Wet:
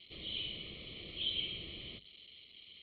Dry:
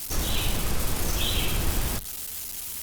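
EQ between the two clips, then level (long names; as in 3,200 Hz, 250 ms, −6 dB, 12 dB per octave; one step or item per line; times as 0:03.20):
formant filter i
Chebyshev low-pass with heavy ripple 4,300 Hz, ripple 6 dB
phaser with its sweep stopped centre 640 Hz, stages 4
+9.5 dB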